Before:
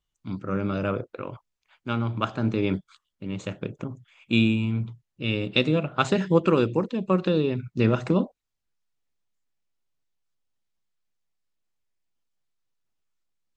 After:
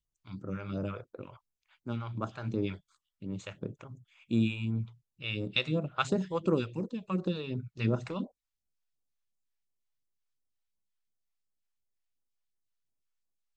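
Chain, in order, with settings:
all-pass phaser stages 2, 2.8 Hz, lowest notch 210–2,800 Hz
level −6.5 dB

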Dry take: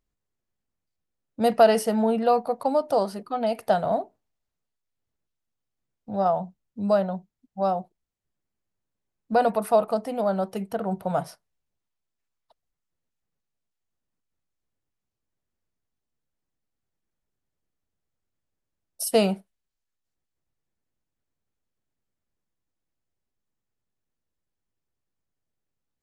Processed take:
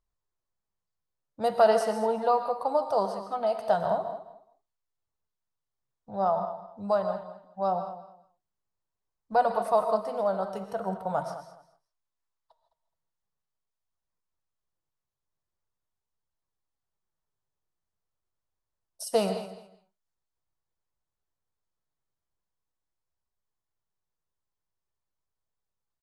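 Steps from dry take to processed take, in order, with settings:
low-pass filter 8,500 Hz 12 dB per octave
reverb whose tail is shaped and stops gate 180 ms rising, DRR 8 dB
flanger 0.43 Hz, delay 0.8 ms, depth 7 ms, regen +75%
graphic EQ with 15 bands 250 Hz −9 dB, 1,000 Hz +6 dB, 2,500 Hz −6 dB
repeating echo 211 ms, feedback 19%, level −14 dB

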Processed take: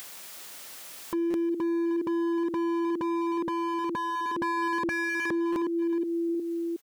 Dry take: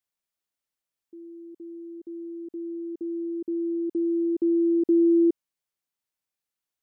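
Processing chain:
in parallel at +2 dB: downward compressor 8 to 1, threshold −31 dBFS, peak gain reduction 13 dB
on the sum: high-pass filter 290 Hz 6 dB per octave
on a send: repeating echo 364 ms, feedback 42%, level −10 dB
on the sum: upward compression, threshold −27 dBFS
dynamic equaliser 410 Hz, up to −6 dB, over −37 dBFS, Q 2.6
wave folding −31.5 dBFS
buffer that repeats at 0:01.30/0:05.52, samples 256, times 6
level +7.5 dB

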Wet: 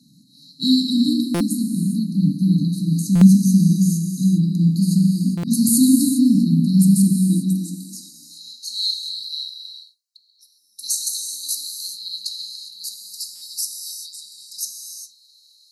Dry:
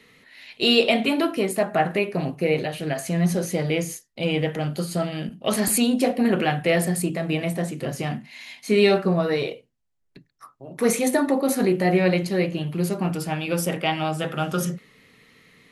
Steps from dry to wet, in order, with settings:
frequency shifter +18 Hz
high-pass filter sweep 150 Hz → 4,000 Hz, 0:07.17–0:08.59
linear-phase brick-wall band-stop 310–3,800 Hz
reverb whose tail is shaped and stops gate 430 ms flat, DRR 2.5 dB
buffer that repeats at 0:01.34/0:03.15/0:05.37/0:13.35, samples 256, times 10
level +3.5 dB

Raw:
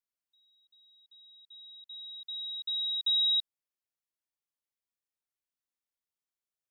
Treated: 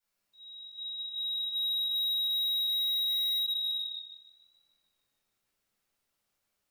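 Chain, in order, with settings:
rectangular room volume 710 cubic metres, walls mixed, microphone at 7.7 metres
downward compressor 3 to 1, threshold −26 dBFS, peak gain reduction 13.5 dB
tape delay 150 ms, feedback 81%, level −9.5 dB, low-pass 3,600 Hz
soft clipping −35.5 dBFS, distortion −5 dB
dynamic equaliser 3,600 Hz, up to +7 dB, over −53 dBFS, Q 1.6

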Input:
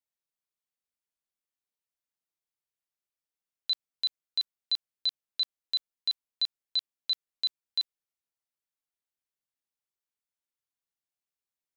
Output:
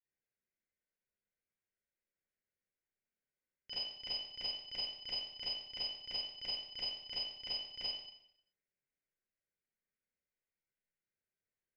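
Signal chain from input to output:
envelope filter 750–1,700 Hz, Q 4.4, up, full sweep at −26 dBFS
Butterworth high-pass 190 Hz 36 dB per octave
phaser with its sweep stopped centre 740 Hz, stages 6
ring modulation 1,000 Hz
convolution reverb RT60 0.75 s, pre-delay 30 ms, DRR −11 dB
level +10 dB

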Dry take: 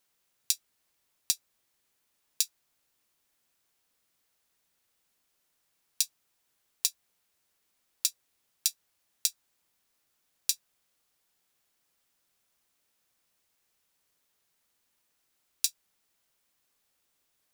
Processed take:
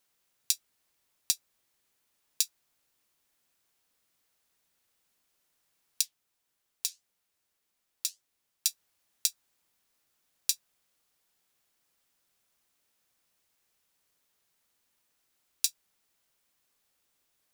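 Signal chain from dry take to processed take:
0:06.01–0:08.66: flanger 1.7 Hz, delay 3.8 ms, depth 8.2 ms, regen −74%

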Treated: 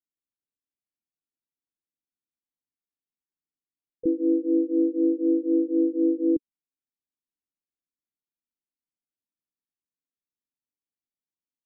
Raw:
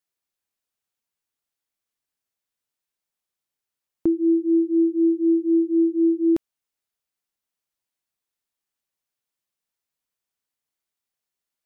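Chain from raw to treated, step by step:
transistor ladder low-pass 340 Hz, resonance 55%
pitch-shifted copies added −3 semitones −10 dB, +7 semitones −11 dB

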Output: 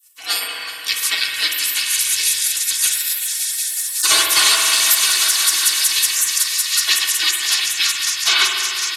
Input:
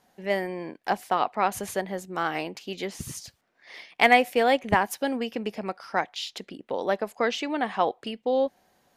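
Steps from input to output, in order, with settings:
0:02.91–0:04.02: sub-harmonics by changed cycles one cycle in 2, inverted
low-pass filter 11,000 Hz 12 dB per octave
notch filter 1,800 Hz, Q 5.1
echo that builds up and dies away 186 ms, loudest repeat 5, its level −11.5 dB
gate on every frequency bin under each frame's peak −30 dB weak
high-pass filter 1,000 Hz 6 dB per octave
high-shelf EQ 5,300 Hz +10 dB
comb filter 2.7 ms, depth 62%
spring reverb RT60 2.4 s, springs 49 ms, chirp 75 ms, DRR 1.5 dB
boost into a limiter +25 dB
level −1 dB

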